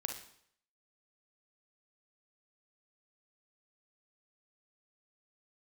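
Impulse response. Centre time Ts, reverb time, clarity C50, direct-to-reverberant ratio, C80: 23 ms, 0.65 s, 5.5 dB, 3.5 dB, 11.0 dB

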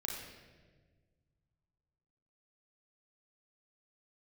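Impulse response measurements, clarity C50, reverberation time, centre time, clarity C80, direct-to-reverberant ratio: 2.0 dB, 1.5 s, 66 ms, 4.0 dB, -2.5 dB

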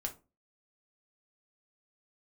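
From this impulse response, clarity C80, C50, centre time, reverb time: 22.5 dB, 15.0 dB, 9 ms, 0.30 s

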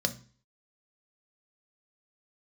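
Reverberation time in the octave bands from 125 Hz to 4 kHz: 0.50, 0.45, 0.40, 0.40, 0.45, 0.45 s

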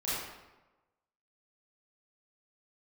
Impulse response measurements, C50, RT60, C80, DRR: -3.0 dB, 1.1 s, 0.5 dB, -11.0 dB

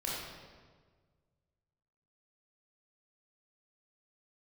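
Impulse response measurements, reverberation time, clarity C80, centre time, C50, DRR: 1.6 s, 1.0 dB, 97 ms, -2.0 dB, -6.0 dB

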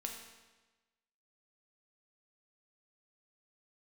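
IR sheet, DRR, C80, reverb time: 1.0 dB, 6.5 dB, 1.2 s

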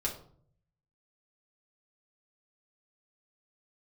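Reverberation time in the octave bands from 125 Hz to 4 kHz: 1.0, 0.75, 0.60, 0.50, 0.35, 0.35 s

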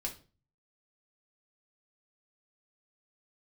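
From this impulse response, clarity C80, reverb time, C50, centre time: 18.5 dB, not exponential, 12.0 dB, 12 ms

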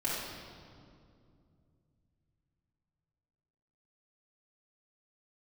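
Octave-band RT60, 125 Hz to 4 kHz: 4.4, 3.4, 2.7, 2.1, 1.7, 1.6 s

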